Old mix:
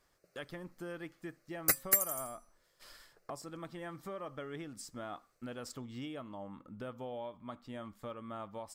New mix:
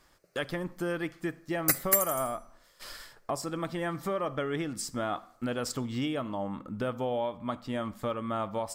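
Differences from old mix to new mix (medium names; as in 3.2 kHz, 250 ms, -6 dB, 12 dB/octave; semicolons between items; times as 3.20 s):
speech +9.5 dB; reverb: on, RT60 0.70 s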